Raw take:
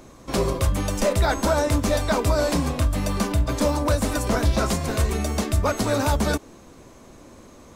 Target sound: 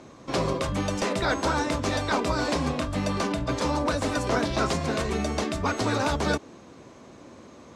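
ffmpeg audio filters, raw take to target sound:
-af "highpass=100,lowpass=5700,afftfilt=real='re*lt(hypot(re,im),0.562)':imag='im*lt(hypot(re,im),0.562)':win_size=1024:overlap=0.75"

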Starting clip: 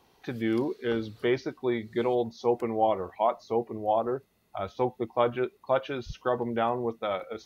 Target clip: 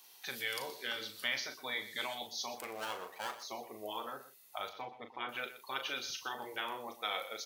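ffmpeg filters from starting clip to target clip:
-filter_complex "[0:a]asettb=1/sr,asplit=3[s0][s1][s2];[s0]atrim=end=2.554[s3];[s1]atrim=start=2.55:end=3.43,asetpts=PTS-STARTPTS,afade=t=in:d=0.004:c=qsin,afade=t=out:st=0.876:d=0.004:c=qsin,aeval=exprs='if(lt(val(0),0),0.447*val(0),val(0))':c=same[s4];[s2]atrim=start=3.426[s5];[s3][s4]acrossfade=d=0.004:c1=hsin:c2=qsin[s6];[s6][s5]acrossfade=d=0.004:c1=qsin:c2=hsin,asettb=1/sr,asplit=3[s7][s8][s9];[s7]atrim=end=4.694[s10];[s8]atrim=start=4.69:end=5.29,asetpts=PTS-STARTPTS,afade=t=in:d=0.004:c=qsin,afade=t=out:st=0.596:d=0.004:c=qsin,lowpass=2300[s11];[s9]atrim=start=5.286[s12];[s10][s11]acrossfade=d=0.004:c1=hsin:c2=qsin[s13];[s13][s12]acrossfade=d=0.004:c1=qsin:c2=hsin,afftfilt=real='re*lt(hypot(re,im),0.2)':imag='im*lt(hypot(re,im),0.2)':win_size=1024:overlap=0.75,adynamicequalizer=threshold=0.0112:dfrequency=520:dqfactor=1.5:tfrequency=520:tqfactor=1.5:attack=5:release=100:ratio=0.375:range=2.5:mode=boostabove:tftype=bell,alimiter=limit=0.0708:level=0:latency=1:release=306,aderivative,asplit=2[s14][s15];[s15]adelay=38,volume=0.398[s16];[s14][s16]amix=inputs=2:normalize=0,aecho=1:1:122:0.2,volume=4.22"

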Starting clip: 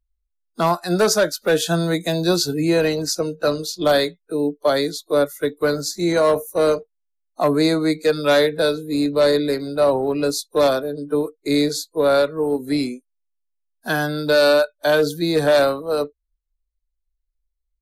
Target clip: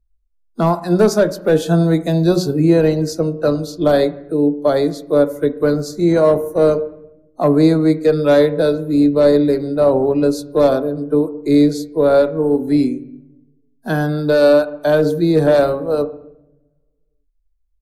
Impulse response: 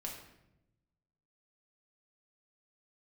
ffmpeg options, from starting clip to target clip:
-filter_complex "[0:a]tiltshelf=f=780:g=6.5,bandreject=f=91.74:t=h:w=4,bandreject=f=183.48:t=h:w=4,bandreject=f=275.22:t=h:w=4,bandreject=f=366.96:t=h:w=4,bandreject=f=458.7:t=h:w=4,bandreject=f=550.44:t=h:w=4,bandreject=f=642.18:t=h:w=4,bandreject=f=733.92:t=h:w=4,bandreject=f=825.66:t=h:w=4,bandreject=f=917.4:t=h:w=4,bandreject=f=1009.14:t=h:w=4,bandreject=f=1100.88:t=h:w=4,bandreject=f=1192.62:t=h:w=4,asplit=2[s0][s1];[1:a]atrim=start_sample=2205,lowpass=2400[s2];[s1][s2]afir=irnorm=-1:irlink=0,volume=0.398[s3];[s0][s3]amix=inputs=2:normalize=0"

